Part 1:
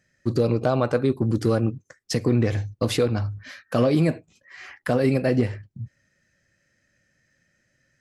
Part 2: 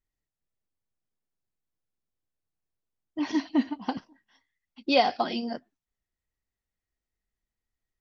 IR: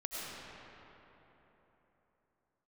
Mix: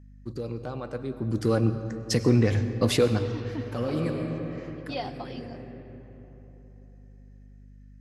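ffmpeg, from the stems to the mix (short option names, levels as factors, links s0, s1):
-filter_complex "[0:a]bandreject=f=650:w=12,volume=0.841,afade=t=in:st=1.07:d=0.61:silence=0.223872,afade=t=out:st=3.98:d=0.8:silence=0.281838,asplit=2[s0][s1];[s1]volume=0.316[s2];[1:a]volume=0.224,asplit=3[s3][s4][s5];[s4]volume=0.158[s6];[s5]apad=whole_len=353025[s7];[s0][s7]sidechaincompress=threshold=0.00282:ratio=5:attack=16:release=1220[s8];[2:a]atrim=start_sample=2205[s9];[s2][s6]amix=inputs=2:normalize=0[s10];[s10][s9]afir=irnorm=-1:irlink=0[s11];[s8][s3][s11]amix=inputs=3:normalize=0,aeval=exprs='val(0)+0.00398*(sin(2*PI*50*n/s)+sin(2*PI*2*50*n/s)/2+sin(2*PI*3*50*n/s)/3+sin(2*PI*4*50*n/s)/4+sin(2*PI*5*50*n/s)/5)':c=same"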